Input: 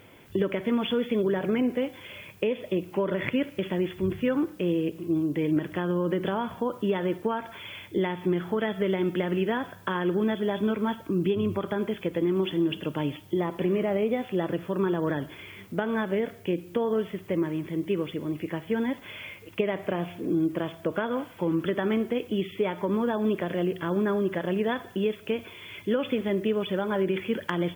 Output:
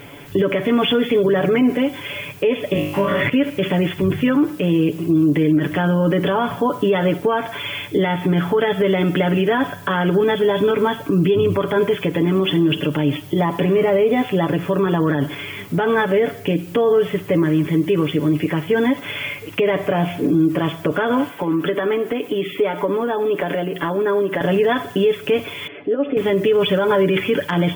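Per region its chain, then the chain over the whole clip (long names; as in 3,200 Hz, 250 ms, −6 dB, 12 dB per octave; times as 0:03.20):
0:02.73–0:03.21: parametric band 400 Hz −10.5 dB 0.97 octaves + flutter between parallel walls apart 3.4 metres, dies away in 0.66 s
0:21.29–0:24.41: high-pass filter 220 Hz + parametric band 5,300 Hz −4.5 dB 1.3 octaves + downward compressor 2.5 to 1, threshold −31 dBFS
0:25.67–0:26.17: downward compressor 2 to 1, threshold −39 dBFS + loudspeaker in its box 260–2,200 Hz, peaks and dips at 290 Hz +6 dB, 470 Hz +6 dB, 680 Hz +5 dB, 1,000 Hz −10 dB, 1,500 Hz −6 dB, 2,200 Hz −8 dB
whole clip: comb filter 7 ms, depth 75%; boost into a limiter +20 dB; level −8 dB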